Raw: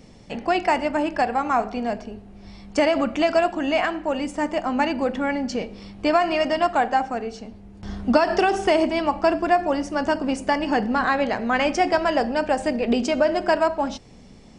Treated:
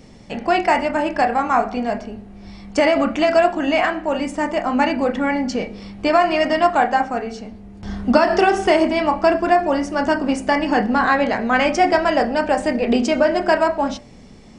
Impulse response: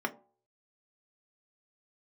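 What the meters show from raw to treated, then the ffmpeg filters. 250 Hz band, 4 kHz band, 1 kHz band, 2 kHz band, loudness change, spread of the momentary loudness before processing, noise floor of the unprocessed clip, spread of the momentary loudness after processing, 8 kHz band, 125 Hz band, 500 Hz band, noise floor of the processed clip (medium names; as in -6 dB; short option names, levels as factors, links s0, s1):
+4.0 dB, +3.0 dB, +4.0 dB, +4.5 dB, +4.0 dB, 10 LU, -46 dBFS, 11 LU, +3.0 dB, +4.0 dB, +4.0 dB, -42 dBFS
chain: -filter_complex "[0:a]asplit=2[s0][s1];[s1]highshelf=f=2900:t=q:w=3:g=-10.5[s2];[1:a]atrim=start_sample=2205,adelay=26[s3];[s2][s3]afir=irnorm=-1:irlink=0,volume=0.178[s4];[s0][s4]amix=inputs=2:normalize=0,volume=1.41"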